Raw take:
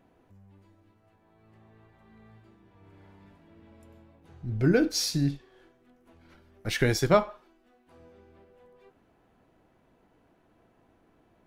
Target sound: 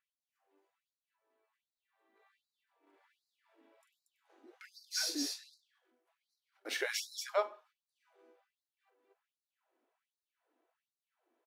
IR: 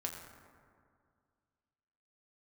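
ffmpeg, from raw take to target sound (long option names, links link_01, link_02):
-af "agate=range=-9dB:threshold=-54dB:ratio=16:detection=peak,aecho=1:1:43.73|233.2:0.398|0.708,afftfilt=real='re*gte(b*sr/1024,240*pow(3900/240,0.5+0.5*sin(2*PI*1.3*pts/sr)))':imag='im*gte(b*sr/1024,240*pow(3900/240,0.5+0.5*sin(2*PI*1.3*pts/sr)))':win_size=1024:overlap=0.75,volume=-7dB"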